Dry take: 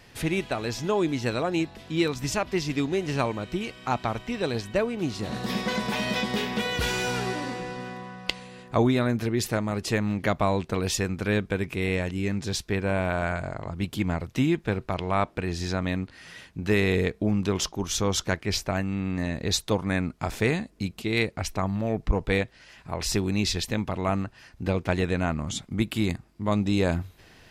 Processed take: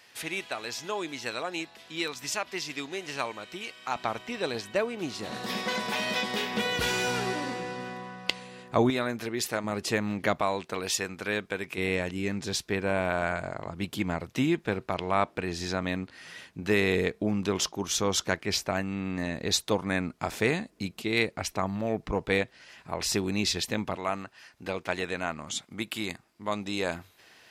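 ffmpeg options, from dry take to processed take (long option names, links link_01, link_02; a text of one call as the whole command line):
ffmpeg -i in.wav -af "asetnsamples=nb_out_samples=441:pad=0,asendcmd='3.96 highpass f 460;6.54 highpass f 180;8.9 highpass f 570;9.64 highpass f 250;10.41 highpass f 660;11.78 highpass f 230;23.96 highpass f 740',highpass=frequency=1200:poles=1" out.wav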